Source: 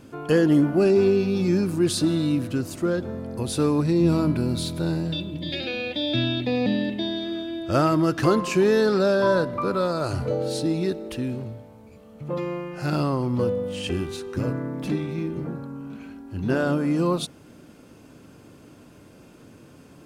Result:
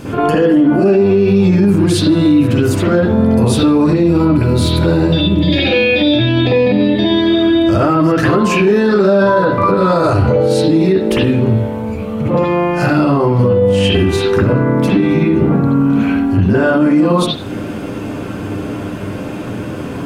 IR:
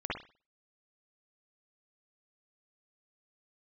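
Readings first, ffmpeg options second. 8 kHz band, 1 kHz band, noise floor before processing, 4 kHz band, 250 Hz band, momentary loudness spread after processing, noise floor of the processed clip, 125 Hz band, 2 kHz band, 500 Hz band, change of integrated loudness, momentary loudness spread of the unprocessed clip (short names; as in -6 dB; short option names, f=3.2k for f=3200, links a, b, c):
+7.0 dB, +12.5 dB, -50 dBFS, +11.0 dB, +12.5 dB, 12 LU, -24 dBFS, +13.0 dB, +13.0 dB, +11.0 dB, +11.5 dB, 12 LU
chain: -filter_complex "[0:a]acompressor=threshold=-34dB:ratio=3[a];[1:a]atrim=start_sample=2205[b];[a][b]afir=irnorm=-1:irlink=0,alimiter=level_in=23.5dB:limit=-1dB:release=50:level=0:latency=1,volume=-3dB"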